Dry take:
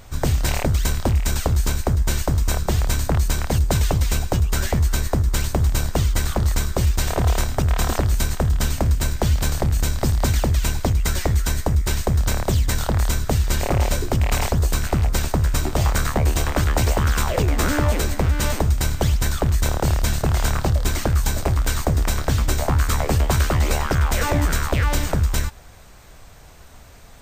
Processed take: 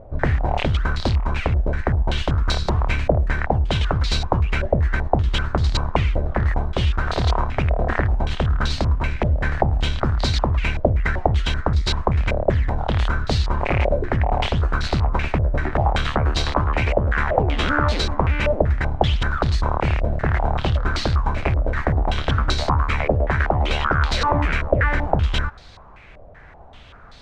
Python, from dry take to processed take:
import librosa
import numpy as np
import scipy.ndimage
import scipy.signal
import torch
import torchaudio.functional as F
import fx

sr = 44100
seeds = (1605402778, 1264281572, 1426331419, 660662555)

y = fx.rider(x, sr, range_db=10, speed_s=0.5)
y = fx.filter_held_lowpass(y, sr, hz=5.2, low_hz=600.0, high_hz=4200.0)
y = y * librosa.db_to_amplitude(-1.0)